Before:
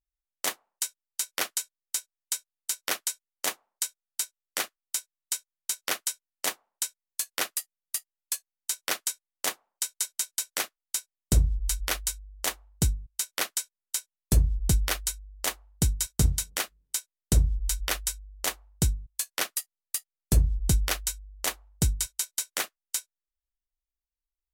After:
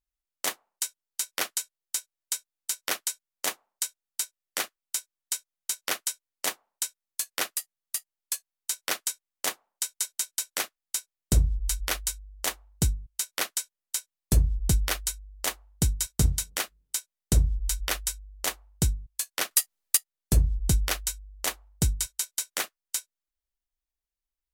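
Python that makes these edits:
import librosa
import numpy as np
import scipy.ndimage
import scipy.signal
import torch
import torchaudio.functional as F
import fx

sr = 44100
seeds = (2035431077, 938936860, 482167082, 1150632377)

y = fx.edit(x, sr, fx.clip_gain(start_s=19.51, length_s=0.46, db=9.0), tone=tone)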